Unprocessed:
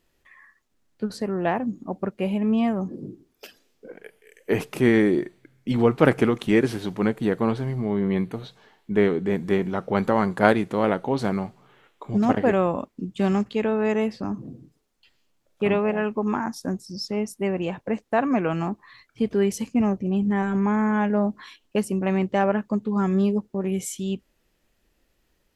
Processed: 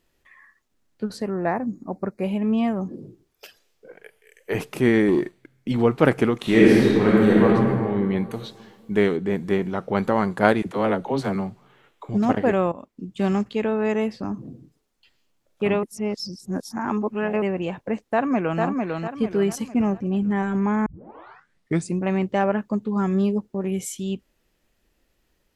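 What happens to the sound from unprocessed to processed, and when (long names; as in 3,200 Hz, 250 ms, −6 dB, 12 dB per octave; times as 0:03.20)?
0:01.30–0:02.24: Butterworth band-reject 3,100 Hz, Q 1.8
0:03.02–0:04.55: parametric band 250 Hz −12 dB 1 octave
0:05.08–0:05.68: leveller curve on the samples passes 1
0:06.41–0:07.46: thrown reverb, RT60 2.1 s, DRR −6.5 dB
0:08.30–0:09.17: high-shelf EQ 3,400 Hz +9 dB
0:10.62–0:12.09: all-pass dispersion lows, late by 43 ms, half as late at 370 Hz
0:12.72–0:13.25: fade in, from −14 dB
0:15.83–0:17.42: reverse
0:18.09–0:18.62: delay throw 450 ms, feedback 40%, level −3.5 dB
0:20.86: tape start 1.15 s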